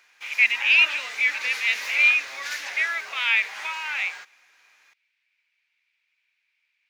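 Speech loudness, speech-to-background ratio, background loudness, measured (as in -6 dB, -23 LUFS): -21.0 LUFS, 12.5 dB, -33.5 LUFS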